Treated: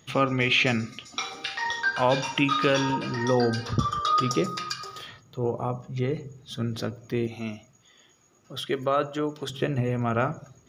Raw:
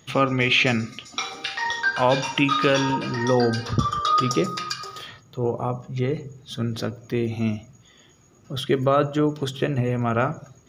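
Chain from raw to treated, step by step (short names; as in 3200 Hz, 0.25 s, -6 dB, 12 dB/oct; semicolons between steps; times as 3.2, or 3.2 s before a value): 7.27–9.5 low shelf 260 Hz -11.5 dB; gain -3 dB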